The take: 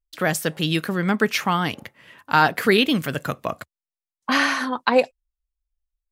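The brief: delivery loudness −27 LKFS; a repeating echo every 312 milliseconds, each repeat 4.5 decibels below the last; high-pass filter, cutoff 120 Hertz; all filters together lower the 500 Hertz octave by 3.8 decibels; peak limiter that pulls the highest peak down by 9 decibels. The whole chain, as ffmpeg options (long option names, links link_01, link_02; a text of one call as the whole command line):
ffmpeg -i in.wav -af "highpass=120,equalizer=frequency=500:width_type=o:gain=-4.5,alimiter=limit=-12.5dB:level=0:latency=1,aecho=1:1:312|624|936|1248|1560|1872|2184|2496|2808:0.596|0.357|0.214|0.129|0.0772|0.0463|0.0278|0.0167|0.01,volume=-2.5dB" out.wav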